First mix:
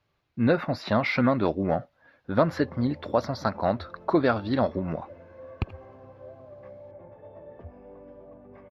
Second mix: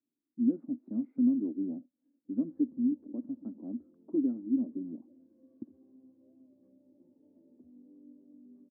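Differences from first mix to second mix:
background: remove band-pass 310 Hz, Q 0.55; master: add Butterworth band-pass 270 Hz, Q 3.5

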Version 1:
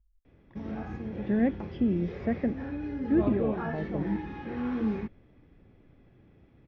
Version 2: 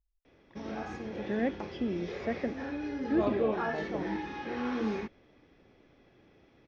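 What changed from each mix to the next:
background +3.5 dB; master: add tone controls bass -13 dB, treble +12 dB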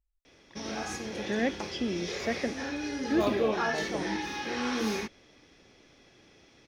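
master: remove tape spacing loss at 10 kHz 33 dB

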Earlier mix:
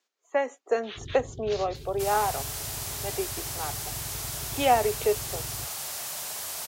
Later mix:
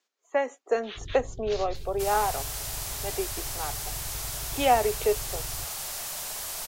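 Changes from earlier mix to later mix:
first sound -4.5 dB; master: remove HPF 86 Hz 12 dB/oct

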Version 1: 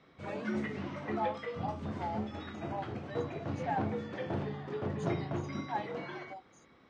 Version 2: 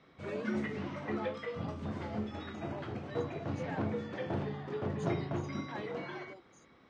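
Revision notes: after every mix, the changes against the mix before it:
speech: remove resonant high-pass 760 Hz, resonance Q 5.3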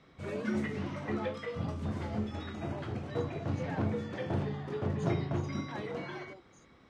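background: remove air absorption 72 m; master: add low shelf 110 Hz +10 dB

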